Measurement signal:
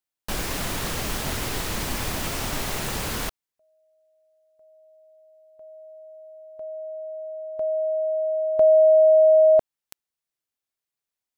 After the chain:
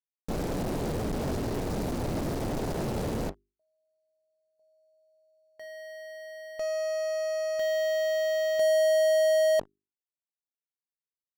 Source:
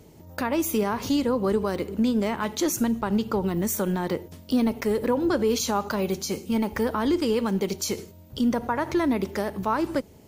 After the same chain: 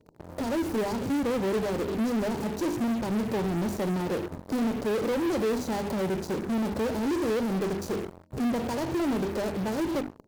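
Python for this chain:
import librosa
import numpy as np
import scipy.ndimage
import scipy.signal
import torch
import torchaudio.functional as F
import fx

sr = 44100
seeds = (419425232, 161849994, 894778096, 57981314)

p1 = scipy.signal.medfilt(x, 41)
p2 = scipy.signal.sosfilt(scipy.signal.cheby1(4, 1.0, [980.0, 4100.0], 'bandstop', fs=sr, output='sos'), p1)
p3 = fx.low_shelf(p2, sr, hz=84.0, db=-9.5)
p4 = fx.hum_notches(p3, sr, base_hz=50, count=8)
p5 = fx.fuzz(p4, sr, gain_db=46.0, gate_db=-48.0)
p6 = p4 + (p5 * librosa.db_to_amplitude(-8.0))
y = p6 * librosa.db_to_amplitude(-8.5)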